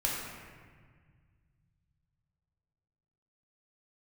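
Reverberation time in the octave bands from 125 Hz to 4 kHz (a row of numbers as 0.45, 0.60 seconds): 3.8, 2.6, 1.7, 1.6, 1.7, 1.2 seconds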